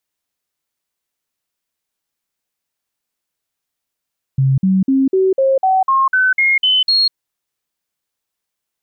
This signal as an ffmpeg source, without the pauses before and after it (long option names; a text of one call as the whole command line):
ffmpeg -f lavfi -i "aevalsrc='0.316*clip(min(mod(t,0.25),0.2-mod(t,0.25))/0.005,0,1)*sin(2*PI*134*pow(2,floor(t/0.25)/2)*mod(t,0.25))':duration=2.75:sample_rate=44100" out.wav